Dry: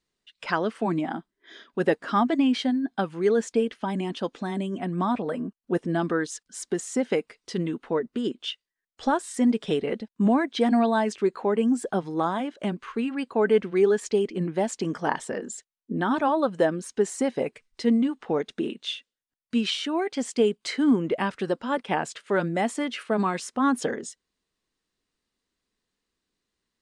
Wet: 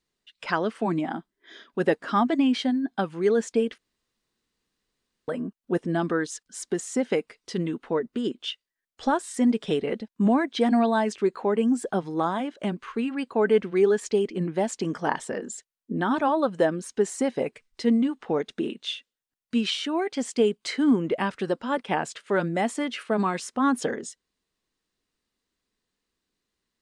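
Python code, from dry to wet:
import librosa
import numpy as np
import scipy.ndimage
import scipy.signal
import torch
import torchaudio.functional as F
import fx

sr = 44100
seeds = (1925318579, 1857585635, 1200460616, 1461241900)

y = fx.edit(x, sr, fx.room_tone_fill(start_s=3.78, length_s=1.5), tone=tone)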